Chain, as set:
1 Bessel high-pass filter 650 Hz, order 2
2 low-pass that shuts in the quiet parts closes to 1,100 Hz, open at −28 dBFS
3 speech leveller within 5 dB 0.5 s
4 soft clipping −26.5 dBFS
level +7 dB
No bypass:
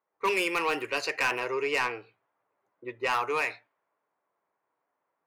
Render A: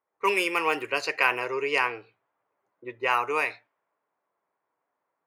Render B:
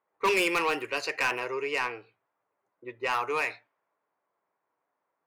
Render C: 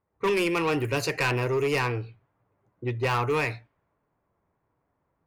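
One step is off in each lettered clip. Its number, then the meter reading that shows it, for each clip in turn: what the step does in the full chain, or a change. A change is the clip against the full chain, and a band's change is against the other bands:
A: 4, distortion level −11 dB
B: 3, change in momentary loudness spread +4 LU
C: 1, 125 Hz band +21.5 dB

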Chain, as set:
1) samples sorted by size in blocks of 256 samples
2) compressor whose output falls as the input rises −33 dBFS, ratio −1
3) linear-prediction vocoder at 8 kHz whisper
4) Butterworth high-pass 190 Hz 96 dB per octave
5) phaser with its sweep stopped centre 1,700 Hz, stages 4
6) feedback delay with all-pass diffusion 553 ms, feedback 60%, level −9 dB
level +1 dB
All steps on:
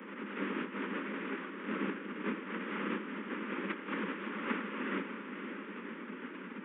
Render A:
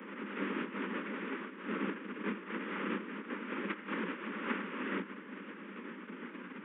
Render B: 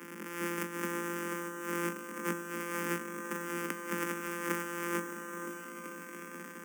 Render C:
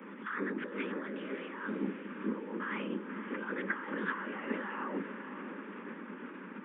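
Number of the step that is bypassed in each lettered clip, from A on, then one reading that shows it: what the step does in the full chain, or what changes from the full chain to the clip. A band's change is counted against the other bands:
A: 6, echo-to-direct ratio −7.0 dB to none audible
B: 3, 250 Hz band −3.5 dB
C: 1, change in momentary loudness spread +1 LU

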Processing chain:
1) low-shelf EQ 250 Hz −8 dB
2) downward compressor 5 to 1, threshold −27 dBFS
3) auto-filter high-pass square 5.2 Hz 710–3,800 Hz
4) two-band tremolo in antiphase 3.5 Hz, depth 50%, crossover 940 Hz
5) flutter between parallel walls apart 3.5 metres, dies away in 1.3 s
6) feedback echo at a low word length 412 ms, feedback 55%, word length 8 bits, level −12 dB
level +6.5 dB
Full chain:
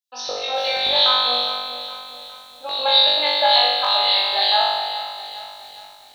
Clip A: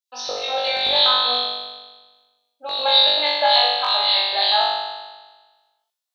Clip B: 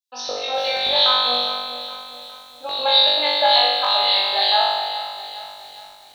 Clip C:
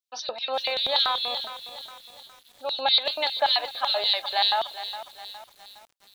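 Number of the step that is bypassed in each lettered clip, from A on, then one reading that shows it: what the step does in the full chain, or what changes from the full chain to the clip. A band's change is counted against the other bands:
6, change in momentary loudness spread −4 LU
1, 250 Hz band +2.5 dB
5, change in integrated loudness −7.5 LU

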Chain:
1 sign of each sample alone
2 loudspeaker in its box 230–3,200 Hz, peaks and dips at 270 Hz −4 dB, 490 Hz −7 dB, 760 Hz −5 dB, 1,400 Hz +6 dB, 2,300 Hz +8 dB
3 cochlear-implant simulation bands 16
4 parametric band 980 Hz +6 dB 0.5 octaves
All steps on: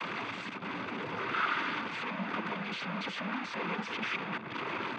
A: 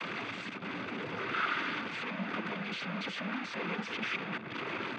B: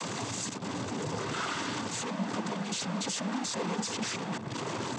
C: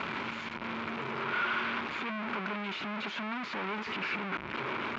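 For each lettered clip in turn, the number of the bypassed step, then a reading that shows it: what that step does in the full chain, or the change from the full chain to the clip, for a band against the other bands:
4, 1 kHz band −3.0 dB
2, 8 kHz band +19.0 dB
3, 125 Hz band −2.0 dB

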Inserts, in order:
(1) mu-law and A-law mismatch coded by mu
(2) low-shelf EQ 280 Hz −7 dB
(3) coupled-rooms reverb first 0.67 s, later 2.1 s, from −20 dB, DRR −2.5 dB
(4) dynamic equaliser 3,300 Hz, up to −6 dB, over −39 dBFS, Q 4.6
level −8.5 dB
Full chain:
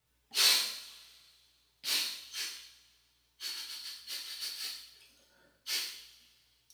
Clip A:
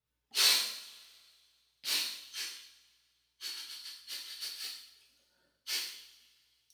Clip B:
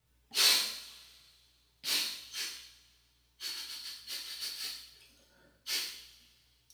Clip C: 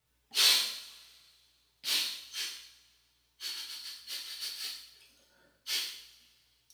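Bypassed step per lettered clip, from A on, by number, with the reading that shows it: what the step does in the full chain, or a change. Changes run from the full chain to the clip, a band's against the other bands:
1, distortion level −22 dB
2, 250 Hz band +3.5 dB
4, 4 kHz band +1.5 dB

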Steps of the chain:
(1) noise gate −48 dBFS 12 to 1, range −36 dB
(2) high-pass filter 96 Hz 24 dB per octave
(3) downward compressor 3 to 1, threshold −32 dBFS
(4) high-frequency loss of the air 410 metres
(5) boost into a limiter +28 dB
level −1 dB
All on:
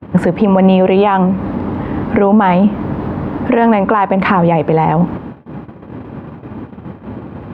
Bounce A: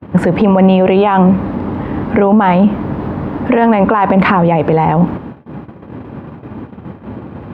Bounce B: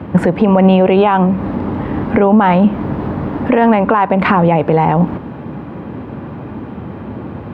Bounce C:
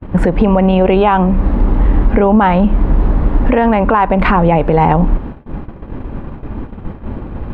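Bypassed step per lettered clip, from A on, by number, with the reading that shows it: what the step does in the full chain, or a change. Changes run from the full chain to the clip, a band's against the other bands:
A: 3, average gain reduction 6.0 dB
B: 1, change in momentary loudness spread −2 LU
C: 2, change in crest factor −2.0 dB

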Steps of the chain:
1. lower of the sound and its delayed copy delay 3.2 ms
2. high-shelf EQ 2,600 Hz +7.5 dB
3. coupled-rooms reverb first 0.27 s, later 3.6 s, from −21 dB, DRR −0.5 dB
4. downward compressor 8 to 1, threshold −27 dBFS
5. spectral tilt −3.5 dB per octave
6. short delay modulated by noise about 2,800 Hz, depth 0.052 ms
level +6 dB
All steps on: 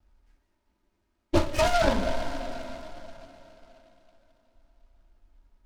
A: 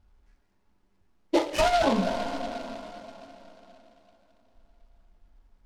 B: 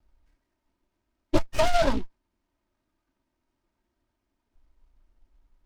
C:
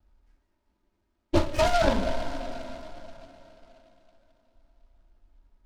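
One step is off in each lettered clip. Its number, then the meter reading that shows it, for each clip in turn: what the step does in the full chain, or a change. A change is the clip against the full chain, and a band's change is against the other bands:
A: 1, 125 Hz band −6.5 dB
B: 3, change in momentary loudness spread −13 LU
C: 2, 8 kHz band −2.0 dB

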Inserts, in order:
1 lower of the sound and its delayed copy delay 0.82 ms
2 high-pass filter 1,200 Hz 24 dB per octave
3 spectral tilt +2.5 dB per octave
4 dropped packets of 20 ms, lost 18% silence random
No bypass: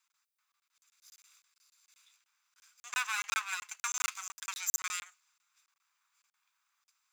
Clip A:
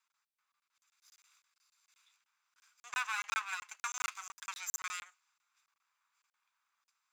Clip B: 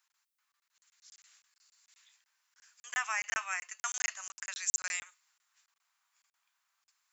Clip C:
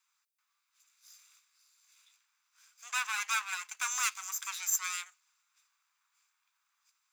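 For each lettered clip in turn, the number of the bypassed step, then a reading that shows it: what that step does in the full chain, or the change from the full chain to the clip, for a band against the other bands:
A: 3, 8 kHz band −4.5 dB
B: 1, 4 kHz band −4.0 dB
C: 4, change in crest factor −1.5 dB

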